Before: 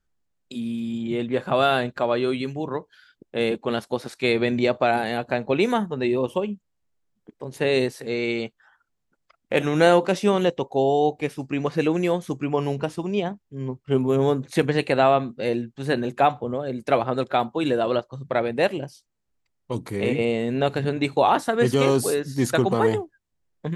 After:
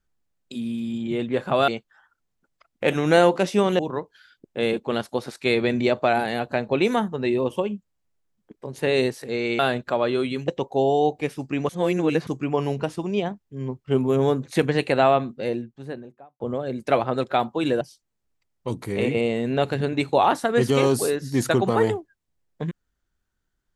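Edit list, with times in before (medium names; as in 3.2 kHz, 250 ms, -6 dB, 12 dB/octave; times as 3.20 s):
1.68–2.57 s: swap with 8.37–10.48 s
11.69–12.27 s: reverse
15.13–16.40 s: studio fade out
17.81–18.85 s: delete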